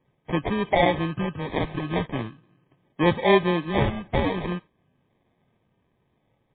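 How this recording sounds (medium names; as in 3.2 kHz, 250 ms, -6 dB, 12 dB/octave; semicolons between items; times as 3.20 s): phasing stages 2, 0.43 Hz, lowest notch 480–2500 Hz; aliases and images of a low sample rate 1.4 kHz, jitter 0%; MP3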